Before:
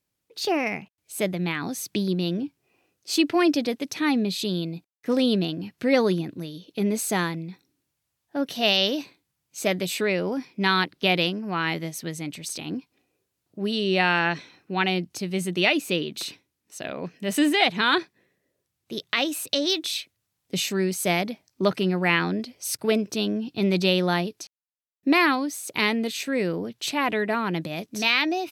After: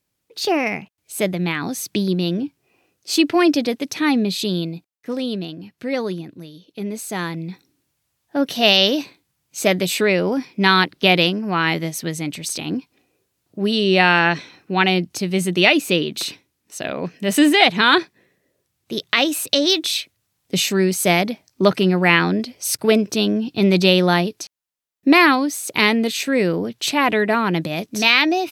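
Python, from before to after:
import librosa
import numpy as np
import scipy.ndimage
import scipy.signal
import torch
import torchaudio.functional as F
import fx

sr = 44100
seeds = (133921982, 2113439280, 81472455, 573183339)

y = fx.gain(x, sr, db=fx.line((4.63, 5.0), (5.16, -3.0), (7.1, -3.0), (7.5, 7.0)))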